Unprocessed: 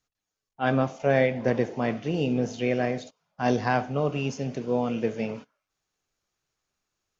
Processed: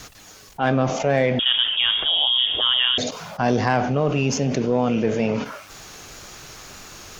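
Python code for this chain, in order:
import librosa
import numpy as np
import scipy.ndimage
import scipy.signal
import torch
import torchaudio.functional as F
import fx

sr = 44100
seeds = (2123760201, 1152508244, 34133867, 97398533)

y = fx.cheby_harmonics(x, sr, harmonics=(8,), levels_db=(-33,), full_scale_db=-8.5)
y = fx.wow_flutter(y, sr, seeds[0], rate_hz=2.1, depth_cents=28.0)
y = fx.freq_invert(y, sr, carrier_hz=3500, at=(1.39, 2.98))
y = fx.env_flatten(y, sr, amount_pct=70)
y = y * librosa.db_to_amplitude(1.5)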